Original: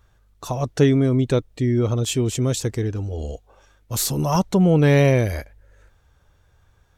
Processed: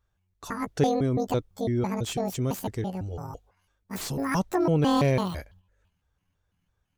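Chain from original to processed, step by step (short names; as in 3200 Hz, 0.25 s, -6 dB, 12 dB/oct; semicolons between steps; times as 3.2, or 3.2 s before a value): trilling pitch shifter +10.5 st, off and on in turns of 0.167 s; gate -47 dBFS, range -10 dB; slew limiter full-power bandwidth 300 Hz; gain -6.5 dB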